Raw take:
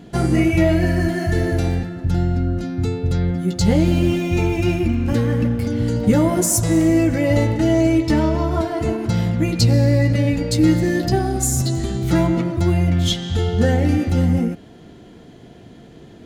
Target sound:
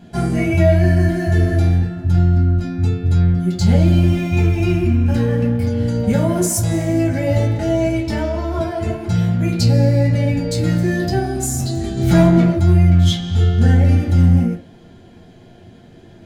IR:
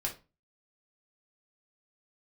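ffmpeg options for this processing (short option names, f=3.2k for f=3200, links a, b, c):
-filter_complex "[0:a]asettb=1/sr,asplit=3[a][b][c];[a]atrim=end=11.974[d];[b]atrim=start=11.97:end=12.56,asetpts=PTS-STARTPTS,afade=t=in:d=0.004:c=qsin,afade=t=out:st=0.586:d=0.004:c=qsin,acontrast=61[e];[c]atrim=start=12.556[f];[d][e]acrossfade=d=0.004:c1=hsin:c2=qsin[g];[g][f]acrossfade=d=0.004:c1=qsin:c2=hsin[h];[1:a]atrim=start_sample=2205[i];[h][i]afir=irnorm=-1:irlink=0,volume=-3.5dB"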